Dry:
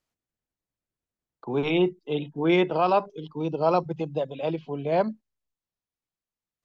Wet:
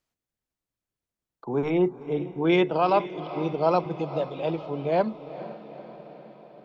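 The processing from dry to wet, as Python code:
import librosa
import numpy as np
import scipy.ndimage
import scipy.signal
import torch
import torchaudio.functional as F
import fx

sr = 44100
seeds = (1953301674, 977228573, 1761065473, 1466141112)

y = fx.band_shelf(x, sr, hz=3400.0, db=-13.5, octaves=1.1, at=(1.49, 2.31))
y = fx.echo_diffused(y, sr, ms=459, feedback_pct=61, wet_db=-14.0)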